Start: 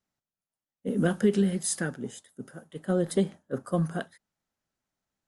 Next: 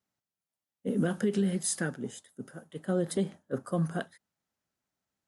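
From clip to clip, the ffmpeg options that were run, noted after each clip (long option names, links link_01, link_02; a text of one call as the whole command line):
ffmpeg -i in.wav -af "highpass=59,alimiter=limit=-18dB:level=0:latency=1:release=93,volume=-1dB" out.wav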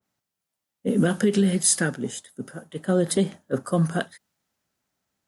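ffmpeg -i in.wav -af "adynamicequalizer=threshold=0.00355:dfrequency=1900:dqfactor=0.7:tfrequency=1900:tqfactor=0.7:attack=5:release=100:ratio=0.375:range=2:mode=boostabove:tftype=highshelf,volume=7.5dB" out.wav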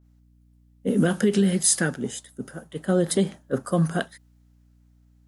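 ffmpeg -i in.wav -af "aeval=exprs='val(0)+0.00158*(sin(2*PI*60*n/s)+sin(2*PI*2*60*n/s)/2+sin(2*PI*3*60*n/s)/3+sin(2*PI*4*60*n/s)/4+sin(2*PI*5*60*n/s)/5)':channel_layout=same" out.wav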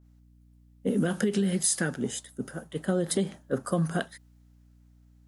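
ffmpeg -i in.wav -af "acompressor=threshold=-24dB:ratio=3" out.wav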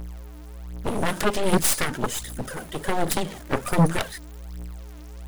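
ffmpeg -i in.wav -af "aeval=exprs='val(0)+0.5*0.01*sgn(val(0))':channel_layout=same,aphaser=in_gain=1:out_gain=1:delay=3.4:decay=0.57:speed=1.3:type=triangular,aeval=exprs='0.282*(cos(1*acos(clip(val(0)/0.282,-1,1)))-cos(1*PI/2))+0.1*(cos(7*acos(clip(val(0)/0.282,-1,1)))-cos(7*PI/2))+0.0562*(cos(8*acos(clip(val(0)/0.282,-1,1)))-cos(8*PI/2))':channel_layout=same" out.wav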